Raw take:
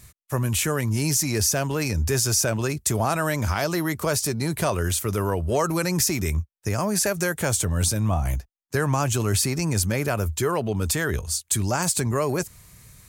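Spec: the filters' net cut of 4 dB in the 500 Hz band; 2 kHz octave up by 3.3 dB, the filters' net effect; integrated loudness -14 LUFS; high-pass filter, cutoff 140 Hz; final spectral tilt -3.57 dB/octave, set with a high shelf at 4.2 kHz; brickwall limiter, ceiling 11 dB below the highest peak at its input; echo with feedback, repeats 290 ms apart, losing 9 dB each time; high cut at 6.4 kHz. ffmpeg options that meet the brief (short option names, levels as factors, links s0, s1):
-af "highpass=140,lowpass=6400,equalizer=f=500:t=o:g=-5.5,equalizer=f=2000:t=o:g=3,highshelf=f=4200:g=8,alimiter=limit=0.119:level=0:latency=1,aecho=1:1:290|580|870|1160:0.355|0.124|0.0435|0.0152,volume=5.01"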